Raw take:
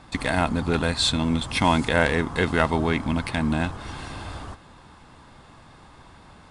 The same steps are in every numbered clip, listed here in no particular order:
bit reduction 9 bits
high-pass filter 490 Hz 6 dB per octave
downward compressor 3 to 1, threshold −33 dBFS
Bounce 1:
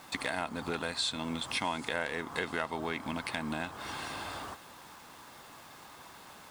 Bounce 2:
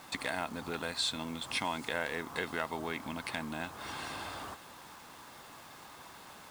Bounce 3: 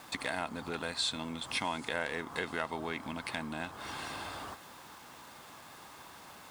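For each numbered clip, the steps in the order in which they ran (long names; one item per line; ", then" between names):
high-pass filter, then bit reduction, then downward compressor
downward compressor, then high-pass filter, then bit reduction
bit reduction, then downward compressor, then high-pass filter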